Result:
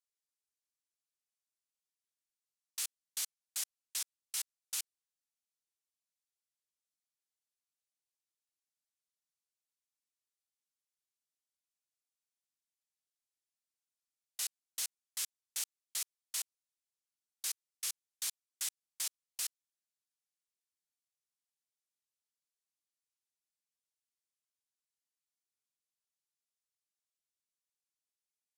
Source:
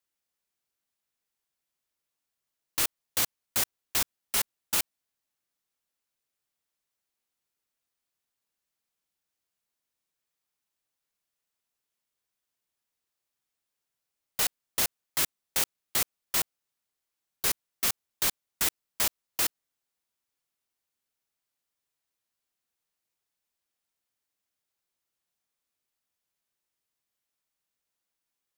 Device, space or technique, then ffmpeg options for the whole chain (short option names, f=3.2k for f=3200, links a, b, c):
piezo pickup straight into a mixer: -af "lowpass=8.4k,aderivative,volume=-4.5dB"